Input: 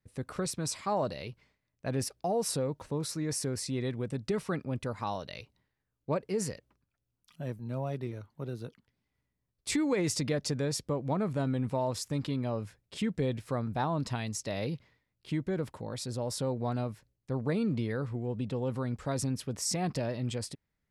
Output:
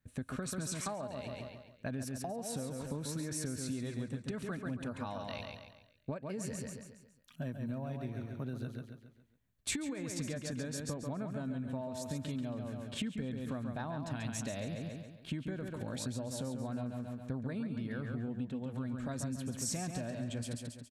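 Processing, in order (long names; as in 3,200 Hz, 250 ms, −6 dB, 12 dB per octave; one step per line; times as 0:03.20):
thirty-one-band graphic EQ 250 Hz +9 dB, 630 Hz +8 dB, 1,600 Hz +6 dB, 5,000 Hz −9 dB, 10,000 Hz −4 dB
repeating echo 138 ms, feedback 43%, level −6 dB
downward compressor 12 to 1, threshold −34 dBFS, peak gain reduction 15.5 dB
parametric band 540 Hz −7.5 dB 2.4 octaves
notch filter 2,000 Hz, Q 16
level +3 dB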